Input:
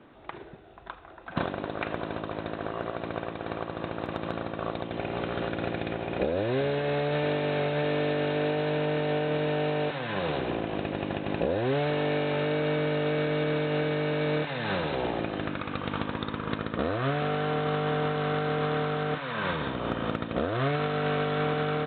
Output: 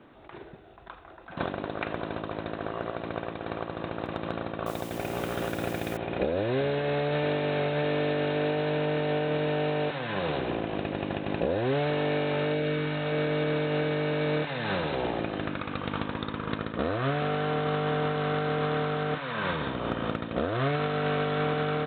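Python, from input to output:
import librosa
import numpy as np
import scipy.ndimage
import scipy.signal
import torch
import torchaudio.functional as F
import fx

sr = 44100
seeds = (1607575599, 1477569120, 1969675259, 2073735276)

y = fx.quant_dither(x, sr, seeds[0], bits=8, dither='triangular', at=(4.66, 5.97))
y = fx.peak_eq(y, sr, hz=fx.line((12.53, 1300.0), (13.11, 320.0)), db=-12.5, octaves=0.5, at=(12.53, 13.11), fade=0.02)
y = fx.attack_slew(y, sr, db_per_s=230.0)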